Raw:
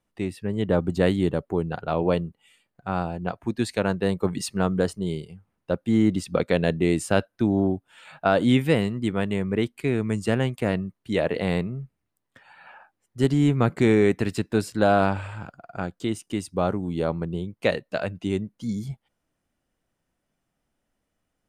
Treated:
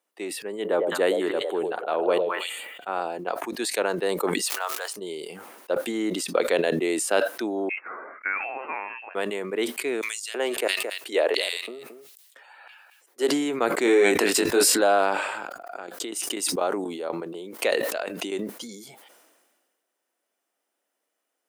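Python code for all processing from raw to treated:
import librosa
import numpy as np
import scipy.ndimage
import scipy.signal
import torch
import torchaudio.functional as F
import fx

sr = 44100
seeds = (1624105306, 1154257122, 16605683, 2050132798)

y = fx.chain(x, sr, fx.peak_eq(hz=5300.0, db=-13.5, octaves=0.37),
    fx.echo_stepped(ms=105, hz=540.0, octaves=1.4, feedback_pct=70, wet_db=-4.5), at=(0.52, 3.01))
y = fx.highpass(y, sr, hz=770.0, slope=24, at=(4.44, 4.94), fade=0.02)
y = fx.dmg_crackle(y, sr, seeds[0], per_s=490.0, level_db=-41.0, at=(4.44, 4.94), fade=0.02)
y = fx.chain(y, sr, fx.highpass(hz=1300.0, slope=12),
    fx.freq_invert(carrier_hz=2900), at=(7.69, 9.15))
y = fx.chain(y, sr, fx.filter_lfo_highpass(shape='square', hz=1.5, low_hz=370.0, high_hz=3500.0, q=1.2),
    fx.echo_single(ms=222, db=-24.0), at=(10.01, 13.31))
y = fx.chain(y, sr, fx.hum_notches(base_hz=50, count=3),
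    fx.doubler(ms=21.0, db=-3),
    fx.env_flatten(amount_pct=70), at=(13.85, 14.81))
y = fx.chain(y, sr, fx.tremolo_shape(shape='saw_down', hz=4.1, depth_pct=80),
    fx.pre_swell(db_per_s=39.0), at=(15.39, 18.49))
y = scipy.signal.sosfilt(scipy.signal.butter(4, 350.0, 'highpass', fs=sr, output='sos'), y)
y = fx.high_shelf(y, sr, hz=8900.0, db=9.0)
y = fx.sustainer(y, sr, db_per_s=36.0)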